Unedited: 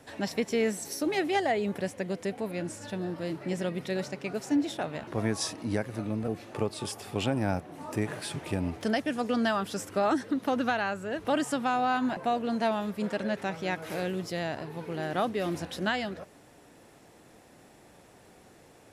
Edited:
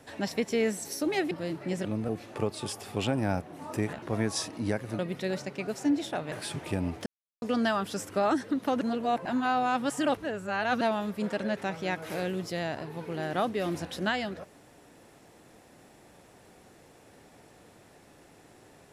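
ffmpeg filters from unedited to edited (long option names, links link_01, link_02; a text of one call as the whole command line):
ffmpeg -i in.wav -filter_complex "[0:a]asplit=10[link_01][link_02][link_03][link_04][link_05][link_06][link_07][link_08][link_09][link_10];[link_01]atrim=end=1.312[link_11];[link_02]atrim=start=3.108:end=3.652[link_12];[link_03]atrim=start=6.038:end=8.122[link_13];[link_04]atrim=start=4.978:end=6.042[link_14];[link_05]atrim=start=3.648:end=4.982[link_15];[link_06]atrim=start=8.118:end=8.86,asetpts=PTS-STARTPTS,afade=type=out:start_time=0.738:duration=0.004:curve=hsin[link_16];[link_07]atrim=start=8.86:end=9.22,asetpts=PTS-STARTPTS,volume=0[link_17];[link_08]atrim=start=9.22:end=10.612,asetpts=PTS-STARTPTS,afade=type=in:duration=0.004:curve=hsin[link_18];[link_09]atrim=start=10.608:end=12.612,asetpts=PTS-STARTPTS,areverse[link_19];[link_10]atrim=start=12.608[link_20];[link_11][link_12]acrossfade=duration=0.004:curve1=hsin:curve2=hsin[link_21];[link_21][link_13]acrossfade=duration=0.004:curve1=hsin:curve2=hsin[link_22];[link_22][link_14]acrossfade=duration=0.004:curve1=hsin:curve2=hsin[link_23];[link_23][link_15]acrossfade=duration=0.004:curve1=hsin:curve2=hsin[link_24];[link_16][link_17][link_18]concat=n=3:v=0:a=1[link_25];[link_24][link_25]acrossfade=duration=0.004:curve1=hsin:curve2=hsin[link_26];[link_26][link_19]acrossfade=duration=0.004:curve1=hsin:curve2=hsin[link_27];[link_27][link_20]acrossfade=duration=0.004:curve1=hsin:curve2=hsin" out.wav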